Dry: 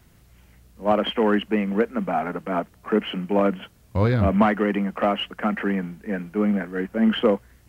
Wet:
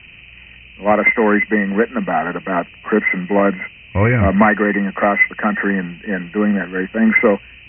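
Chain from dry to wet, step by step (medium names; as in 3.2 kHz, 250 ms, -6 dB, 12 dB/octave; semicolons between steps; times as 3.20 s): knee-point frequency compression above 1.8 kHz 4:1; resonant low-pass 2.5 kHz, resonance Q 9.1; trim +5 dB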